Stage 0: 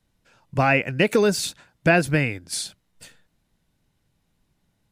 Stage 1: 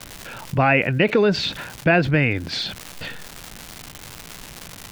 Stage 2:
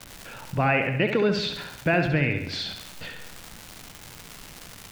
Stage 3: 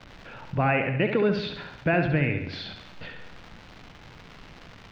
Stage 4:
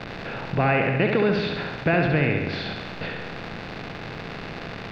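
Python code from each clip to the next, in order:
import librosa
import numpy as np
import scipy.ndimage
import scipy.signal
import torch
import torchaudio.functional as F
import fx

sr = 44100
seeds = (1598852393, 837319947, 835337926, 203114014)

y1 = scipy.signal.sosfilt(scipy.signal.butter(4, 3700.0, 'lowpass', fs=sr, output='sos'), x)
y1 = fx.dmg_crackle(y1, sr, seeds[0], per_s=360.0, level_db=-47.0)
y1 = fx.env_flatten(y1, sr, amount_pct=50)
y2 = fx.echo_feedback(y1, sr, ms=68, feedback_pct=55, wet_db=-7.5)
y2 = y2 * librosa.db_to_amplitude(-6.0)
y3 = fx.air_absorb(y2, sr, metres=230.0)
y4 = fx.bin_compress(y3, sr, power=0.6)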